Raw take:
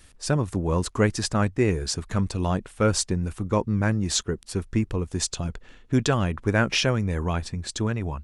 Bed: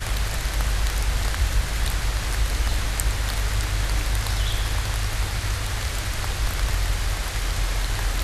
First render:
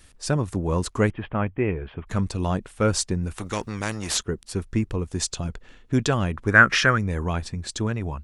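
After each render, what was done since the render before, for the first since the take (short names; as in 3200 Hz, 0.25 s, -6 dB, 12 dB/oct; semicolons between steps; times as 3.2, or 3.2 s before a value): 1.1–2.07 rippled Chebyshev low-pass 3300 Hz, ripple 3 dB; 3.38–4.18 spectral compressor 2:1; 6.51–6.98 band shelf 1500 Hz +13 dB 1 oct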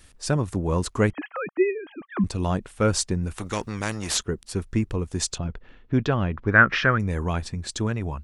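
1.13–2.24 sine-wave speech; 5.38–7 air absorption 230 m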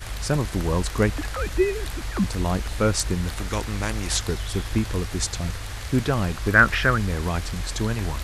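add bed -7 dB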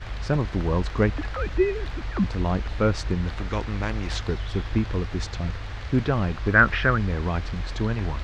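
air absorption 200 m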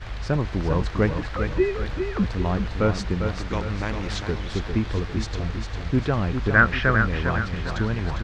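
feedback echo 0.402 s, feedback 46%, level -7 dB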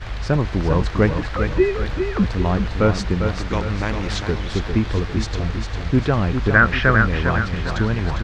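gain +4.5 dB; limiter -2 dBFS, peak gain reduction 3 dB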